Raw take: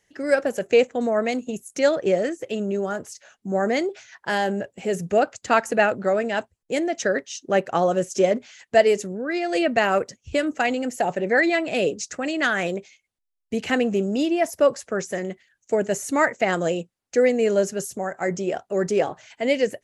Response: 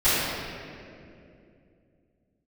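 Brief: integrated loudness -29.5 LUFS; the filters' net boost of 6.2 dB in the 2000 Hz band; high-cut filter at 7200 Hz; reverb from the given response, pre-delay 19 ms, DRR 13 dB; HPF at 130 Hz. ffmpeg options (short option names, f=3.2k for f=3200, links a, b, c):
-filter_complex "[0:a]highpass=130,lowpass=7.2k,equalizer=f=2k:t=o:g=7.5,asplit=2[a][b];[1:a]atrim=start_sample=2205,adelay=19[c];[b][c]afir=irnorm=-1:irlink=0,volume=-31.5dB[d];[a][d]amix=inputs=2:normalize=0,volume=-8.5dB"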